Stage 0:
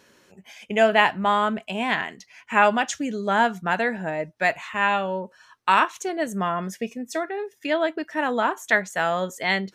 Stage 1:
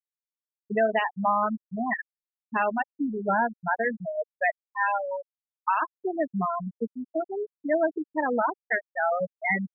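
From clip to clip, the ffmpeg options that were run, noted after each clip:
-af "afftfilt=real='re*gte(hypot(re,im),0.282)':imag='im*gte(hypot(re,im),0.282)':win_size=1024:overlap=0.75,alimiter=limit=-14.5dB:level=0:latency=1:release=299"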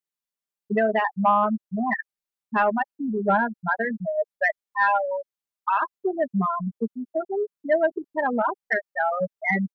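-af "aecho=1:1:5:0.56,acontrast=78,volume=-5dB"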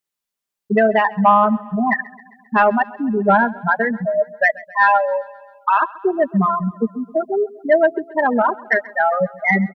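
-af "aecho=1:1:133|266|399|532|665:0.0891|0.0517|0.03|0.0174|0.0101,volume=7dB"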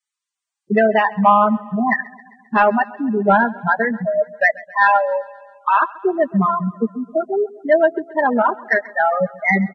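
-ar 22050 -c:a libvorbis -b:a 16k

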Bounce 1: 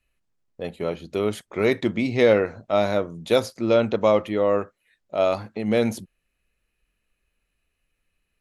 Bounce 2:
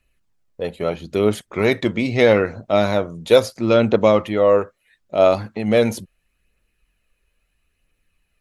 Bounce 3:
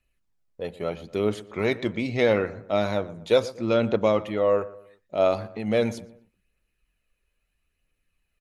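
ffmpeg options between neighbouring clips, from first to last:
-af "aphaser=in_gain=1:out_gain=1:delay=2.2:decay=0.31:speed=0.76:type=triangular,volume=4.5dB"
-filter_complex "[0:a]acrossover=split=8400[a][b];[b]acompressor=threshold=-54dB:ratio=4:attack=1:release=60[c];[a][c]amix=inputs=2:normalize=0,asplit=2[d][e];[e]adelay=120,lowpass=f=2k:p=1,volume=-17dB,asplit=2[f][g];[g]adelay=120,lowpass=f=2k:p=1,volume=0.41,asplit=2[h][i];[i]adelay=120,lowpass=f=2k:p=1,volume=0.41[j];[d][f][h][j]amix=inputs=4:normalize=0,volume=-7dB"

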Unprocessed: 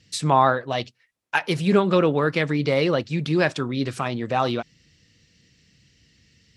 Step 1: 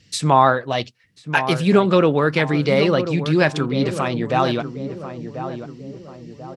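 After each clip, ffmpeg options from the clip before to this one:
-filter_complex "[0:a]asplit=2[a][b];[b]adelay=1040,lowpass=f=970:p=1,volume=-9dB,asplit=2[c][d];[d]adelay=1040,lowpass=f=970:p=1,volume=0.5,asplit=2[e][f];[f]adelay=1040,lowpass=f=970:p=1,volume=0.5,asplit=2[g][h];[h]adelay=1040,lowpass=f=970:p=1,volume=0.5,asplit=2[i][j];[j]adelay=1040,lowpass=f=970:p=1,volume=0.5,asplit=2[k][l];[l]adelay=1040,lowpass=f=970:p=1,volume=0.5[m];[a][c][e][g][i][k][m]amix=inputs=7:normalize=0,volume=3.5dB"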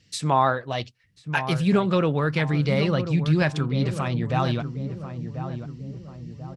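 -af "asubboost=boost=7:cutoff=150,volume=-6dB"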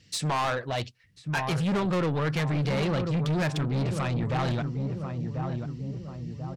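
-af "asoftclip=type=tanh:threshold=-25.5dB,volume=2dB"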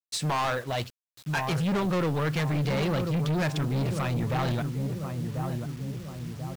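-af "acrusher=bits=7:mix=0:aa=0.000001"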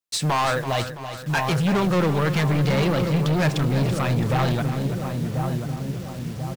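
-af "aecho=1:1:333|666|999|1332|1665|1998:0.282|0.158|0.0884|0.0495|0.0277|0.0155,volume=5.5dB"

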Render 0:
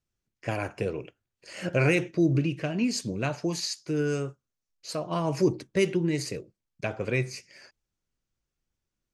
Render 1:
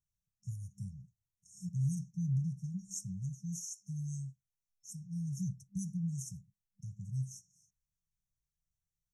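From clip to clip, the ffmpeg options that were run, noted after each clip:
-af "afftfilt=real='re*(1-between(b*sr/4096,200,5400))':imag='im*(1-between(b*sr/4096,200,5400))':win_size=4096:overlap=0.75,volume=-5.5dB"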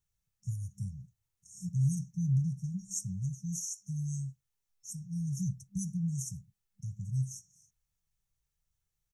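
-af "aecho=1:1:2.3:0.3,volume=5dB"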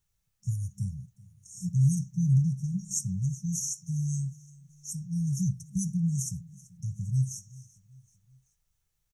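-af "aecho=1:1:384|768|1152:0.0794|0.0397|0.0199,volume=5.5dB"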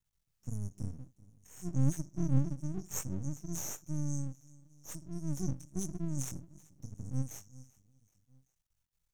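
-af "flanger=delay=19.5:depth=4:speed=1.5,aeval=exprs='max(val(0),0)':c=same"

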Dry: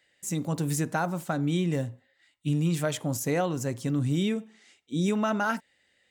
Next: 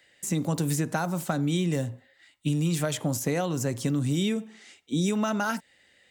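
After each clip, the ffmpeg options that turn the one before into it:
-filter_complex "[0:a]acrossover=split=140|3800[a][b][c];[a]acompressor=threshold=-43dB:ratio=4[d];[b]acompressor=threshold=-33dB:ratio=4[e];[c]acompressor=threshold=-40dB:ratio=4[f];[d][e][f]amix=inputs=3:normalize=0,volume=7dB"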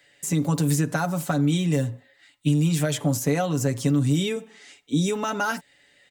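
-af "aecho=1:1:7:0.63,volume=1.5dB"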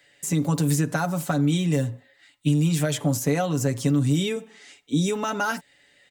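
-af anull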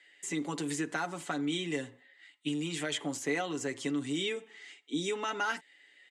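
-af "highpass=350,equalizer=f=350:t=q:w=4:g=8,equalizer=f=580:t=q:w=4:g=-7,equalizer=f=2k:t=q:w=4:g=8,equalizer=f=3.1k:t=q:w=4:g=6,equalizer=f=5.6k:t=q:w=4:g=-4,lowpass=f=8.8k:w=0.5412,lowpass=f=8.8k:w=1.3066,volume=-7dB"

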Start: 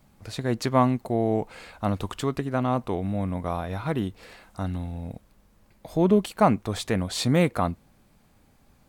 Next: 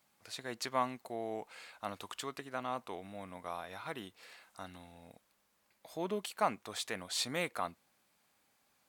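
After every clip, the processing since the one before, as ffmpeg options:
-af "highpass=f=1.4k:p=1,volume=-5dB"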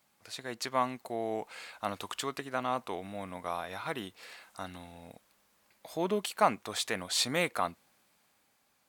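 -af "dynaudnorm=f=180:g=11:m=4dB,volume=2dB"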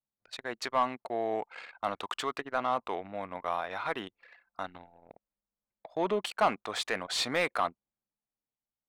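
-filter_complex "[0:a]asplit=2[a][b];[b]highpass=f=720:p=1,volume=12dB,asoftclip=type=tanh:threshold=-10dB[c];[a][c]amix=inputs=2:normalize=0,lowpass=f=1.9k:p=1,volume=-6dB,asoftclip=type=tanh:threshold=-16dB,anlmdn=0.251"

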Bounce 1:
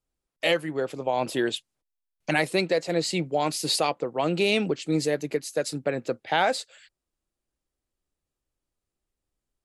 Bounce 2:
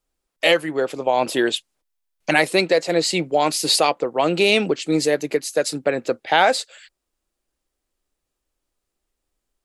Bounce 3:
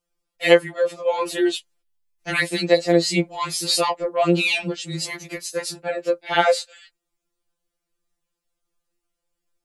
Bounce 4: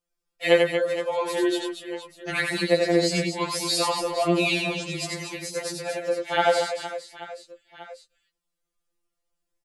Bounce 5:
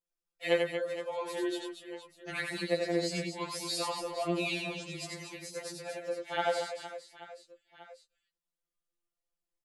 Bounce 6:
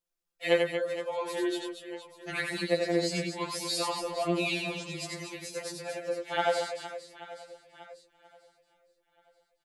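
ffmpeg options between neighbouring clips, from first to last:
-af "equalizer=f=110:t=o:w=1.8:g=-9,volume=7.5dB"
-af "afftfilt=real='re*2.83*eq(mod(b,8),0)':imag='im*2.83*eq(mod(b,8),0)':win_size=2048:overlap=0.75"
-af "aecho=1:1:90|234|464.4|833|1423:0.631|0.398|0.251|0.158|0.1,volume=-5dB"
-af "aeval=exprs='0.501*(cos(1*acos(clip(val(0)/0.501,-1,1)))-cos(1*PI/2))+0.02*(cos(3*acos(clip(val(0)/0.501,-1,1)))-cos(3*PI/2))':c=same,volume=-9dB"
-af "aecho=1:1:932|1864|2796:0.0708|0.0283|0.0113,volume=3dB"

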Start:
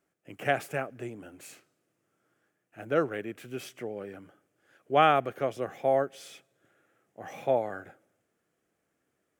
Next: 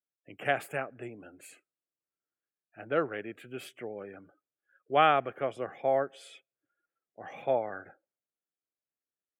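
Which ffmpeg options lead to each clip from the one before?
-af "lowshelf=f=450:g=-5.5,afftdn=nr=24:nf=-56,equalizer=f=5.8k:w=3.8:g=-12"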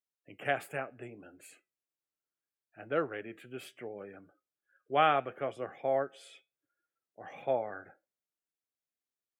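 -af "flanger=delay=6.4:depth=1.4:regen=-80:speed=0.71:shape=sinusoidal,volume=1.5dB"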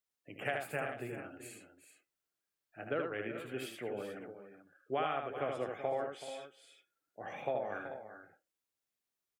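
-af "acompressor=threshold=-34dB:ratio=8,aecho=1:1:77|379|435:0.596|0.237|0.237,volume=2dB"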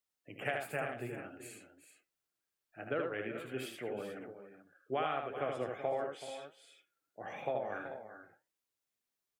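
-af "flanger=delay=4.1:depth=4.8:regen=83:speed=1.5:shape=triangular,volume=4.5dB"

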